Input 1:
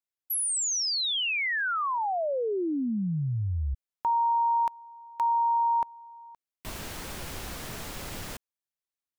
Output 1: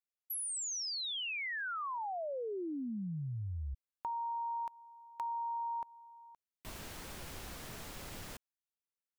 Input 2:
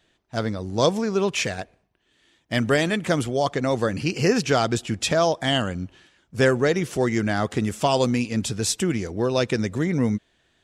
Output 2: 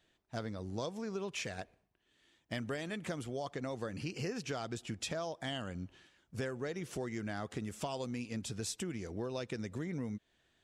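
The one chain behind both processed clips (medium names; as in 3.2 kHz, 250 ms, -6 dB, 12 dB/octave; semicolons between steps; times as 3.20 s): compression 5:1, threshold -28 dBFS; trim -8.5 dB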